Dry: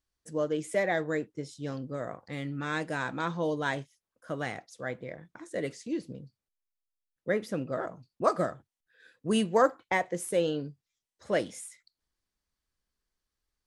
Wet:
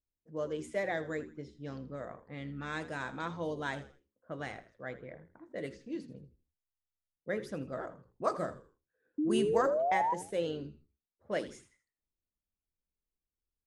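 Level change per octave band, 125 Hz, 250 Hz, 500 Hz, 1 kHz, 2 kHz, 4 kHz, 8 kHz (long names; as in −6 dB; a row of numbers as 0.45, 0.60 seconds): −6.0, −4.5, −4.5, −2.0, −6.0, −6.0, −9.0 decibels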